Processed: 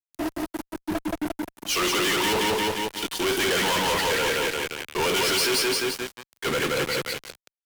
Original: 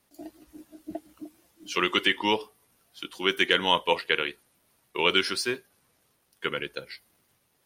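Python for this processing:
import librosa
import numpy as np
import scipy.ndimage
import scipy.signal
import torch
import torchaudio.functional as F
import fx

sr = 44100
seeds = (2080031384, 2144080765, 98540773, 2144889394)

p1 = np.clip(x, -10.0 ** (-18.0 / 20.0), 10.0 ** (-18.0 / 20.0))
p2 = x + (p1 * librosa.db_to_amplitude(-7.0))
p3 = fx.echo_feedback(p2, sr, ms=175, feedback_pct=45, wet_db=-3.5)
p4 = fx.leveller(p3, sr, passes=2)
p5 = fx.fuzz(p4, sr, gain_db=38.0, gate_db=-42.0)
p6 = fx.band_widen(p5, sr, depth_pct=40)
y = p6 * librosa.db_to_amplitude(-9.0)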